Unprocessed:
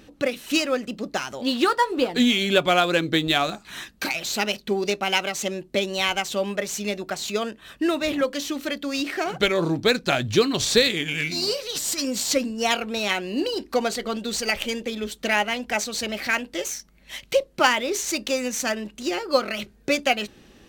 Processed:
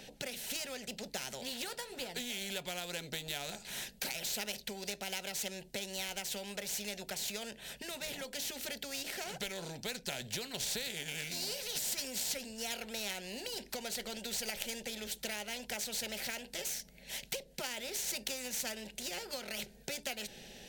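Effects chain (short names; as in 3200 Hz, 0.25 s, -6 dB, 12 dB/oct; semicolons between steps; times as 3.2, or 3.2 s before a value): compressor 4:1, threshold -25 dBFS, peak gain reduction 11 dB; fixed phaser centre 310 Hz, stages 6; spectral compressor 2:1; gain -2 dB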